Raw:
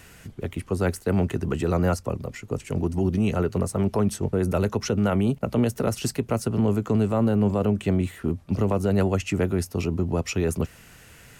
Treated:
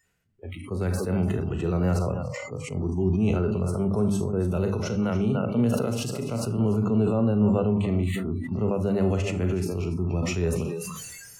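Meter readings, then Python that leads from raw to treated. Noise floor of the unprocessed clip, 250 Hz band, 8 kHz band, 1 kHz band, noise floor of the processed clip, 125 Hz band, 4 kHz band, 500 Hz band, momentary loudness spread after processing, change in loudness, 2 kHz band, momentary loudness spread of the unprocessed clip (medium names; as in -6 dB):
-50 dBFS, -0.5 dB, -2.5 dB, -4.0 dB, -45 dBFS, -0.5 dB, -2.0 dB, -1.5 dB, 9 LU, -1.0 dB, -3.0 dB, 8 LU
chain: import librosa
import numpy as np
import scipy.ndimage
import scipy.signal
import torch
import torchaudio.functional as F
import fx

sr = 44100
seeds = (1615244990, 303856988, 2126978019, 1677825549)

y = fx.high_shelf(x, sr, hz=8200.0, db=-5.0)
y = fx.hum_notches(y, sr, base_hz=50, count=6)
y = y + 10.0 ** (-11.5 / 20.0) * np.pad(y, (int(293 * sr / 1000.0), 0))[:len(y)]
y = fx.rev_schroeder(y, sr, rt60_s=0.44, comb_ms=30, drr_db=13.0)
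y = fx.hpss(y, sr, part='percussive', gain_db=-11)
y = fx.noise_reduce_blind(y, sr, reduce_db=28)
y = fx.sustainer(y, sr, db_per_s=28.0)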